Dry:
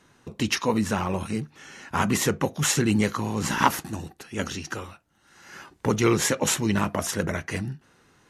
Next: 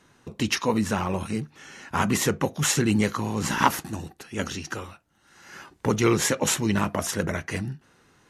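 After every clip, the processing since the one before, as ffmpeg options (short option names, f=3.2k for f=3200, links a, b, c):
-af anull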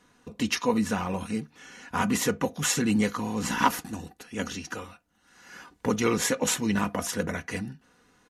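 -af "aecho=1:1:4.1:0.5,volume=-3.5dB"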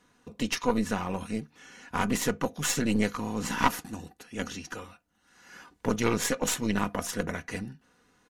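-af "aeval=exprs='0.473*(cos(1*acos(clip(val(0)/0.473,-1,1)))-cos(1*PI/2))+0.133*(cos(2*acos(clip(val(0)/0.473,-1,1)))-cos(2*PI/2))+0.0376*(cos(6*acos(clip(val(0)/0.473,-1,1)))-cos(6*PI/2))':c=same,volume=-3dB"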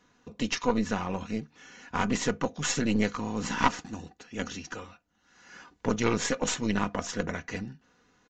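-af "aresample=16000,aresample=44100"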